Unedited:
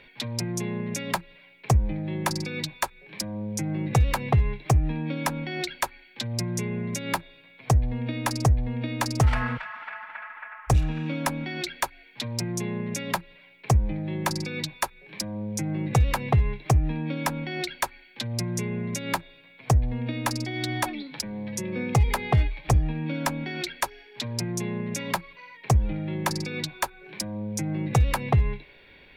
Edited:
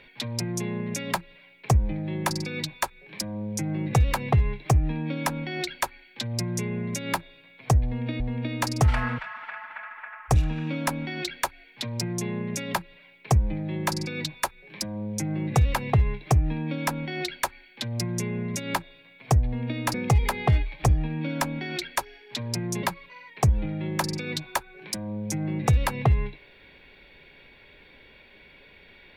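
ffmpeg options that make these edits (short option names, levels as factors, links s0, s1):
-filter_complex "[0:a]asplit=4[s0][s1][s2][s3];[s0]atrim=end=8.202[s4];[s1]atrim=start=8.588:end=20.332[s5];[s2]atrim=start=21.788:end=24.682[s6];[s3]atrim=start=25.098[s7];[s4][s5]acrossfade=d=0.004:c1=hsin:c2=hsin[s8];[s8][s6]acrossfade=d=0.004:c1=hsin:c2=hsin[s9];[s9][s7]acrossfade=d=0.004:c1=hsin:c2=hsin"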